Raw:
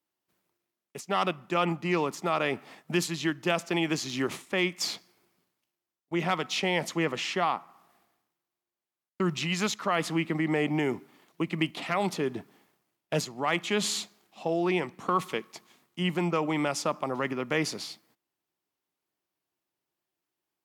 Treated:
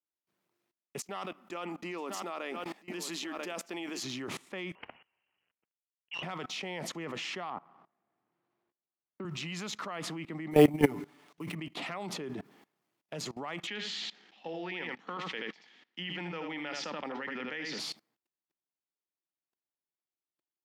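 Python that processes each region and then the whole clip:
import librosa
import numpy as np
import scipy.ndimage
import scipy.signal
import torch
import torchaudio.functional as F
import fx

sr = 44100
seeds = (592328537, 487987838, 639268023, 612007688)

y = fx.chain(x, sr, fx.brickwall_highpass(low_hz=180.0),
    fx.high_shelf(hz=8300.0, db=9.0),
    fx.echo_single(ms=990, db=-14.0), at=(0.99, 4.03))
y = fx.chain(y, sr, fx.cvsd(bps=64000),
    fx.freq_invert(carrier_hz=3100),
    fx.transformer_sat(knee_hz=1300.0), at=(4.75, 6.23))
y = fx.chain(y, sr, fx.leveller(passes=1),
    fx.spacing_loss(db_at_10k=35),
    fx.band_squash(depth_pct=40), at=(7.5, 9.25))
y = fx.chain(y, sr, fx.comb(ms=6.9, depth=0.87),
    fx.sample_hold(seeds[0], rate_hz=12000.0, jitter_pct=0),
    fx.sustainer(db_per_s=130.0), at=(10.51, 11.55))
y = fx.chain(y, sr, fx.cabinet(low_hz=200.0, low_slope=24, high_hz=5400.0, hz=(240.0, 370.0, 640.0, 1100.0, 1800.0, 3100.0), db=(-4, -9, -9, -10, 8, 5)),
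    fx.echo_single(ms=80, db=-7.5),
    fx.sustainer(db_per_s=100.0), at=(13.67, 17.79))
y = scipy.signal.sosfilt(scipy.signal.butter(2, 110.0, 'highpass', fs=sr, output='sos'), y)
y = fx.high_shelf(y, sr, hz=6900.0, db=-7.0)
y = fx.level_steps(y, sr, step_db=22)
y = F.gain(torch.from_numpy(y), 5.5).numpy()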